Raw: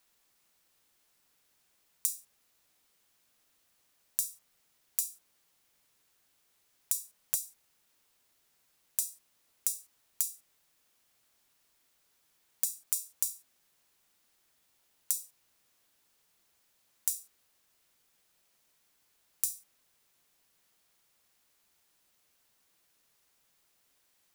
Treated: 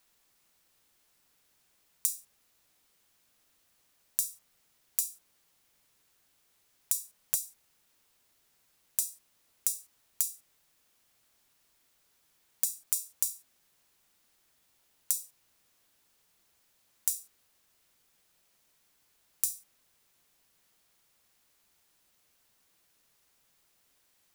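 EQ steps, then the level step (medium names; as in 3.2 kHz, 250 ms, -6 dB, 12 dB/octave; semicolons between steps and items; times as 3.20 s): bass shelf 180 Hz +3 dB; +1.5 dB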